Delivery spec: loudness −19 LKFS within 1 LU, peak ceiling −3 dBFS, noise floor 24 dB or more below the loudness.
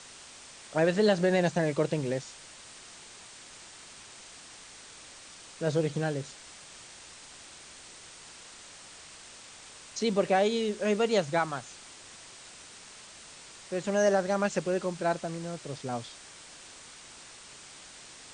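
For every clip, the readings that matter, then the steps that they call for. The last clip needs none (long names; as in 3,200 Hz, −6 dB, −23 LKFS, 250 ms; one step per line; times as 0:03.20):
background noise floor −50 dBFS; target noise floor −53 dBFS; integrated loudness −29.0 LKFS; sample peak −13.5 dBFS; target loudness −19.0 LKFS
→ broadband denoise 6 dB, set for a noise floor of −50 dBFS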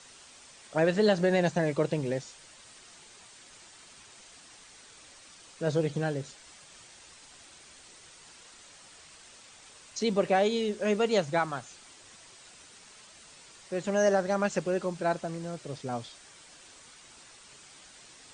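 background noise floor −54 dBFS; integrated loudness −29.0 LKFS; sample peak −13.5 dBFS; target loudness −19.0 LKFS
→ level +10 dB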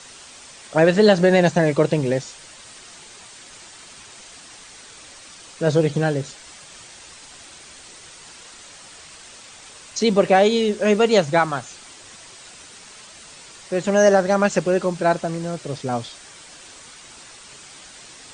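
integrated loudness −19.0 LKFS; sample peak −3.5 dBFS; background noise floor −44 dBFS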